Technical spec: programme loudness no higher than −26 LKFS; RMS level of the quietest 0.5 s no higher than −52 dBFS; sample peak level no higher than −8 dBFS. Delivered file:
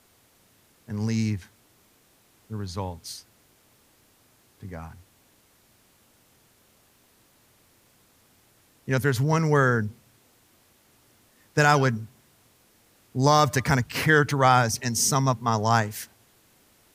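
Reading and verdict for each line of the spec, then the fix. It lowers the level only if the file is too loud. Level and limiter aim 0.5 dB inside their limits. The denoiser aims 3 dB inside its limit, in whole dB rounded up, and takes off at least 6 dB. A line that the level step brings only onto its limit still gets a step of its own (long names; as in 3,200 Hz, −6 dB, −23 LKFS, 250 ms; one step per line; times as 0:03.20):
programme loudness −23.5 LKFS: out of spec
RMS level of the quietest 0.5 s −61 dBFS: in spec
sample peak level −5.5 dBFS: out of spec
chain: level −3 dB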